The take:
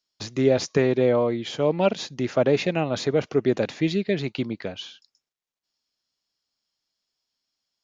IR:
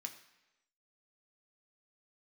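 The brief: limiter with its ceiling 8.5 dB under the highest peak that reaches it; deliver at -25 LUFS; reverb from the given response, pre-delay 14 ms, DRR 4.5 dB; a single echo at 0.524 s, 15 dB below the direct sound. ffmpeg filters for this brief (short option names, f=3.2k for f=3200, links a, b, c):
-filter_complex "[0:a]alimiter=limit=-15.5dB:level=0:latency=1,aecho=1:1:524:0.178,asplit=2[a][b];[1:a]atrim=start_sample=2205,adelay=14[c];[b][c]afir=irnorm=-1:irlink=0,volume=-1.5dB[d];[a][d]amix=inputs=2:normalize=0,volume=2dB"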